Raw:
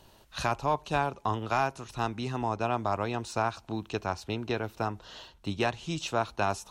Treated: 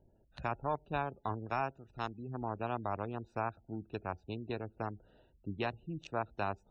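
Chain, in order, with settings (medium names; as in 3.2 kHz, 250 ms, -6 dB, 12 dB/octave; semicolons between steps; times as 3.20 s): local Wiener filter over 41 samples; 1.73–2.29 s: tilt shelf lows -3.5 dB, about 890 Hz; spectral gate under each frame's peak -30 dB strong; trim -6.5 dB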